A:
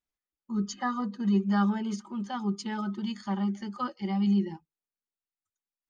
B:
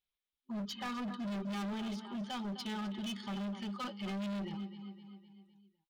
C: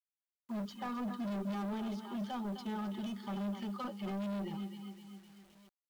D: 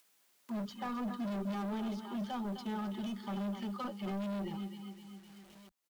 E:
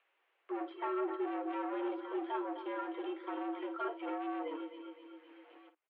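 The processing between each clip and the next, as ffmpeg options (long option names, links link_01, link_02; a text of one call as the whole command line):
ffmpeg -i in.wav -af "superequalizer=6b=0.562:12b=2:13b=3.16:15b=0.355,aecho=1:1:255|510|765|1020|1275:0.188|0.0979|0.0509|0.0265|0.0138,volume=33dB,asoftclip=hard,volume=-33dB,volume=-3.5dB" out.wav
ffmpeg -i in.wav -filter_complex "[0:a]acrossover=split=200|1300[link_01][link_02][link_03];[link_01]flanger=delay=3.8:depth=3.9:regen=67:speed=0.81:shape=sinusoidal[link_04];[link_03]acompressor=threshold=-56dB:ratio=6[link_05];[link_04][link_02][link_05]amix=inputs=3:normalize=0,acrusher=bits=10:mix=0:aa=0.000001,volume=2.5dB" out.wav
ffmpeg -i in.wav -filter_complex "[0:a]acrossover=split=140[link_01][link_02];[link_01]asplit=2[link_03][link_04];[link_04]adelay=22,volume=-4dB[link_05];[link_03][link_05]amix=inputs=2:normalize=0[link_06];[link_02]acompressor=mode=upward:threshold=-50dB:ratio=2.5[link_07];[link_06][link_07]amix=inputs=2:normalize=0,volume=1dB" out.wav
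ffmpeg -i in.wav -filter_complex "[0:a]asplit=2[link_01][link_02];[link_02]aecho=0:1:12|54:0.398|0.266[link_03];[link_01][link_03]amix=inputs=2:normalize=0,highpass=frequency=190:width_type=q:width=0.5412,highpass=frequency=190:width_type=q:width=1.307,lowpass=frequency=2700:width_type=q:width=0.5176,lowpass=frequency=2700:width_type=q:width=0.7071,lowpass=frequency=2700:width_type=q:width=1.932,afreqshift=130,volume=1dB" out.wav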